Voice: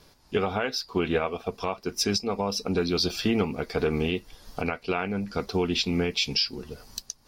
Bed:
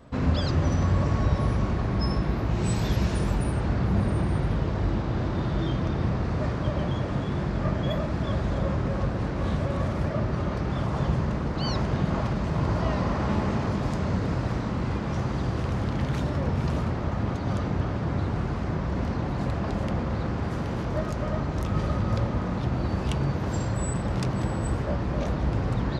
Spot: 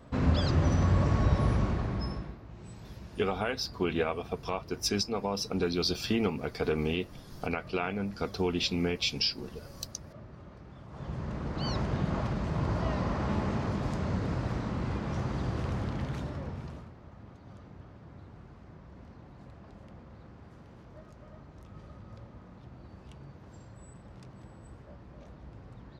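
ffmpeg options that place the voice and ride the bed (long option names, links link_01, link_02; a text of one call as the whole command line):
ffmpeg -i stem1.wav -i stem2.wav -filter_complex "[0:a]adelay=2850,volume=-4dB[link_01];[1:a]volume=14.5dB,afade=type=out:start_time=1.55:duration=0.83:silence=0.105925,afade=type=in:start_time=10.87:duration=0.79:silence=0.149624,afade=type=out:start_time=15.7:duration=1.21:silence=0.133352[link_02];[link_01][link_02]amix=inputs=2:normalize=0" out.wav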